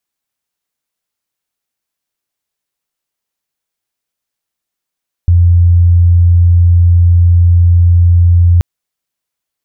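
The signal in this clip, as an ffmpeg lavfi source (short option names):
-f lavfi -i "aevalsrc='0.668*sin(2*PI*86.9*t)':d=3.33:s=44100"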